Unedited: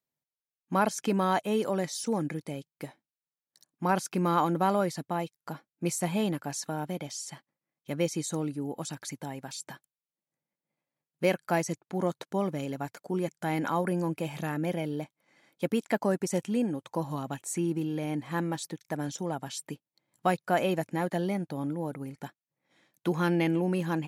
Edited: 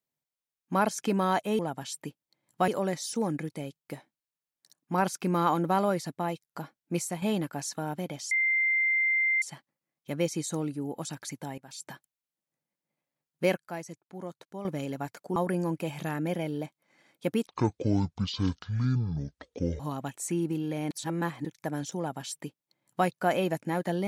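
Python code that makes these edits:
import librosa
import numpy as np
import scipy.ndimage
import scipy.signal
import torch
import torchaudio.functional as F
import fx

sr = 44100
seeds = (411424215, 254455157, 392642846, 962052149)

y = fx.edit(x, sr, fx.fade_out_to(start_s=5.88, length_s=0.25, floor_db=-8.5),
    fx.insert_tone(at_s=7.22, length_s=1.11, hz=2090.0, db=-22.5),
    fx.fade_in_from(start_s=9.38, length_s=0.28, floor_db=-20.5),
    fx.clip_gain(start_s=11.37, length_s=1.08, db=-10.5),
    fx.cut(start_s=13.16, length_s=0.58),
    fx.speed_span(start_s=15.85, length_s=1.21, speed=0.52),
    fx.reverse_span(start_s=18.17, length_s=0.54),
    fx.duplicate(start_s=19.24, length_s=1.09, to_s=1.59), tone=tone)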